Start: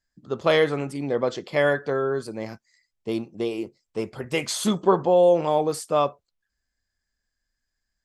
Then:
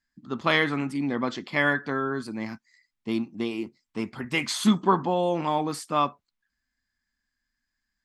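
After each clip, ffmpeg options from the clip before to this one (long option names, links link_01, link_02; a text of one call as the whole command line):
ffmpeg -i in.wav -af "equalizer=frequency=250:width_type=o:width=1:gain=12,equalizer=frequency=500:width_type=o:width=1:gain=-10,equalizer=frequency=1000:width_type=o:width=1:gain=7,equalizer=frequency=2000:width_type=o:width=1:gain=7,equalizer=frequency=4000:width_type=o:width=1:gain=4,volume=-5dB" out.wav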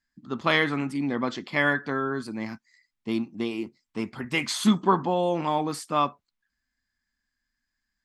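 ffmpeg -i in.wav -af anull out.wav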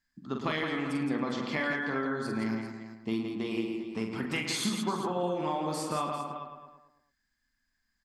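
ffmpeg -i in.wav -filter_complex "[0:a]asplit=2[link_01][link_02];[link_02]adelay=108,lowpass=frequency=2800:poles=1,volume=-9dB,asplit=2[link_03][link_04];[link_04]adelay=108,lowpass=frequency=2800:poles=1,volume=0.51,asplit=2[link_05][link_06];[link_06]adelay=108,lowpass=frequency=2800:poles=1,volume=0.51,asplit=2[link_07][link_08];[link_08]adelay=108,lowpass=frequency=2800:poles=1,volume=0.51,asplit=2[link_09][link_10];[link_10]adelay=108,lowpass=frequency=2800:poles=1,volume=0.51,asplit=2[link_11][link_12];[link_12]adelay=108,lowpass=frequency=2800:poles=1,volume=0.51[link_13];[link_03][link_05][link_07][link_09][link_11][link_13]amix=inputs=6:normalize=0[link_14];[link_01][link_14]amix=inputs=2:normalize=0,acompressor=threshold=-30dB:ratio=6,asplit=2[link_15][link_16];[link_16]aecho=0:1:45|168|396:0.531|0.531|0.224[link_17];[link_15][link_17]amix=inputs=2:normalize=0" out.wav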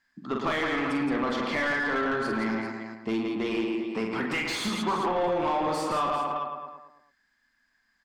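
ffmpeg -i in.wav -filter_complex "[0:a]asplit=2[link_01][link_02];[link_02]highpass=frequency=720:poles=1,volume=20dB,asoftclip=type=tanh:threshold=-17.5dB[link_03];[link_01][link_03]amix=inputs=2:normalize=0,lowpass=frequency=1700:poles=1,volume=-6dB" out.wav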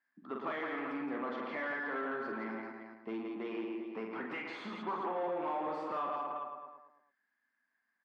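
ffmpeg -i in.wav -af "highpass=260,lowpass=2100,volume=-9dB" out.wav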